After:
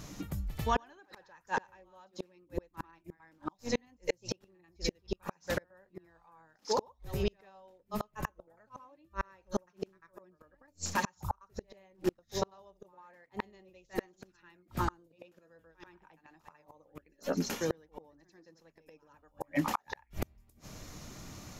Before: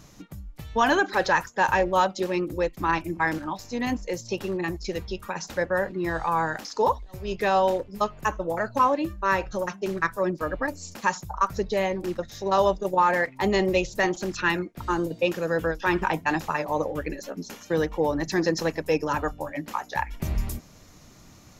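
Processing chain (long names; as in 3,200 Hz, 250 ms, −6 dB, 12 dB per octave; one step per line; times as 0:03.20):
backwards echo 94 ms −11.5 dB
gate with flip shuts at −21 dBFS, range −39 dB
level +3 dB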